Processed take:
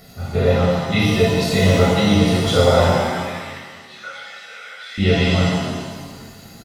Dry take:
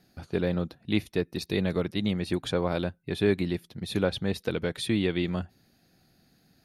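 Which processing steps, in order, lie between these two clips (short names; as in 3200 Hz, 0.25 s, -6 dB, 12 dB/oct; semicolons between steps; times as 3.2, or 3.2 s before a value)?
comb 1.5 ms, depth 97%; upward compressor, threshold -43 dBFS; 2.96–4.98 ladder band-pass 1900 Hz, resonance 40%; shimmer reverb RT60 1.6 s, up +7 st, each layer -8 dB, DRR -11 dB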